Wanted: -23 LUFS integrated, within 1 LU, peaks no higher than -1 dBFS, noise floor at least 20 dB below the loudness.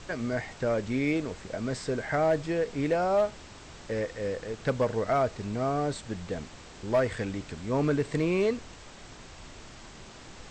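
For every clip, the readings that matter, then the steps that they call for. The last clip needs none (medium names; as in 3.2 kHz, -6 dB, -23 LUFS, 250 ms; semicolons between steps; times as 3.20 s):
clipped samples 0.2%; clipping level -18.0 dBFS; noise floor -48 dBFS; noise floor target -50 dBFS; loudness -29.5 LUFS; peak level -18.0 dBFS; loudness target -23.0 LUFS
-> clip repair -18 dBFS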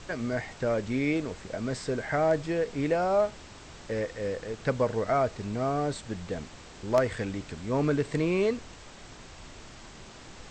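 clipped samples 0.0%; noise floor -48 dBFS; noise floor target -50 dBFS
-> noise print and reduce 6 dB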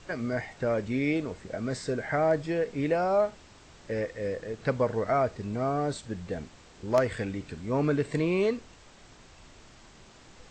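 noise floor -54 dBFS; loudness -29.5 LUFS; peak level -9.0 dBFS; loudness target -23.0 LUFS
-> trim +6.5 dB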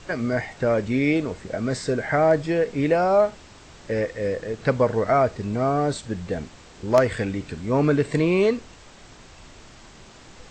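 loudness -23.0 LUFS; peak level -2.5 dBFS; noise floor -47 dBFS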